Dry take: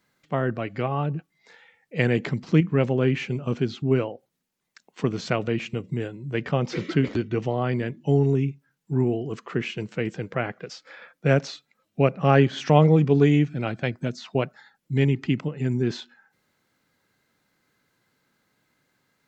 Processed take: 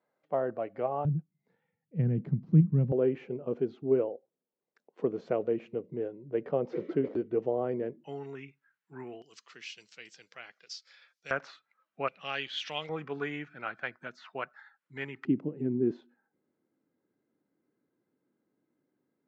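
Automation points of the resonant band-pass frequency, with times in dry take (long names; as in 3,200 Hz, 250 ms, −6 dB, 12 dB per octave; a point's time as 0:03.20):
resonant band-pass, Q 2.1
610 Hz
from 0:01.05 150 Hz
from 0:02.92 470 Hz
from 0:08.04 1,600 Hz
from 0:09.22 5,100 Hz
from 0:11.31 1,300 Hz
from 0:12.08 3,300 Hz
from 0:12.89 1,400 Hz
from 0:15.25 320 Hz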